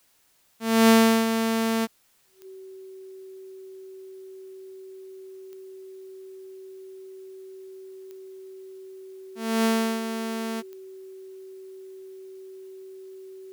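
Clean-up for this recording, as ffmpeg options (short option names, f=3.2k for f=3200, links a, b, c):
-af "adeclick=t=4,bandreject=f=380:w=30,agate=range=-21dB:threshold=-35dB"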